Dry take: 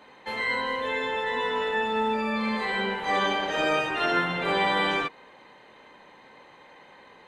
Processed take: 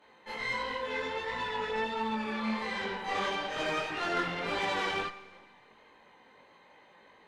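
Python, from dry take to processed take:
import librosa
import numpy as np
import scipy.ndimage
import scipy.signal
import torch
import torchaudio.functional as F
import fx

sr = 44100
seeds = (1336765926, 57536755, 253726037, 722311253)

y = fx.tube_stage(x, sr, drive_db=22.0, bias=0.75)
y = fx.chorus_voices(y, sr, voices=2, hz=1.4, base_ms=20, depth_ms=3.0, mix_pct=55)
y = fx.rev_schroeder(y, sr, rt60_s=1.5, comb_ms=32, drr_db=14.5)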